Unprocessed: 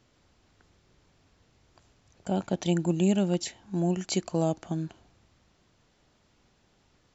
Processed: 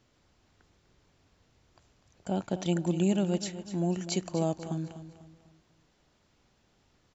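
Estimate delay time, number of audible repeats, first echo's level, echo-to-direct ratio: 248 ms, 3, −12.5 dB, −12.0 dB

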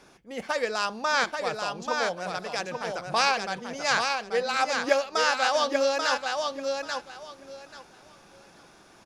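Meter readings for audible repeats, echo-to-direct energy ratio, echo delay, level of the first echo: 3, −4.5 dB, 836 ms, −4.5 dB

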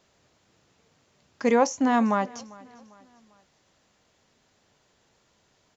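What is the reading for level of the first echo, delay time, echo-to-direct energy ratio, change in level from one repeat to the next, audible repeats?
−22.5 dB, 398 ms, −21.5 dB, −7.0 dB, 2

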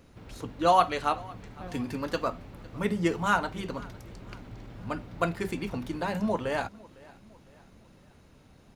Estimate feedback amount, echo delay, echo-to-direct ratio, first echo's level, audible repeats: 47%, 506 ms, −22.0 dB, −23.0 dB, 2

